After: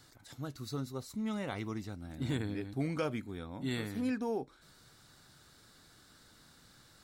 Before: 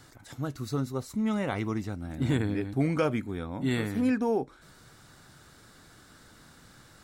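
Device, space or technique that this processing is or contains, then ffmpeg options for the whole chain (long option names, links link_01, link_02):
presence and air boost: -af "equalizer=frequency=4200:width_type=o:width=0.81:gain=6,highshelf=frequency=9200:gain=5.5,volume=-8dB"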